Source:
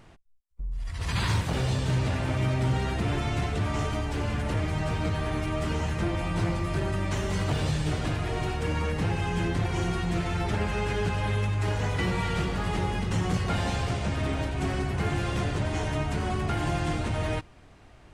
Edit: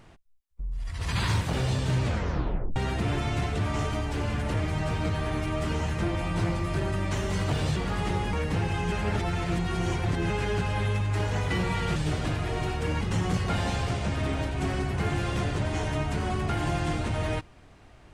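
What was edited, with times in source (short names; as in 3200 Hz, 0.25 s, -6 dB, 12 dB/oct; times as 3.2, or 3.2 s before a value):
2.04 tape stop 0.72 s
7.76–8.81 swap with 12.44–13.01
9.4–10.78 reverse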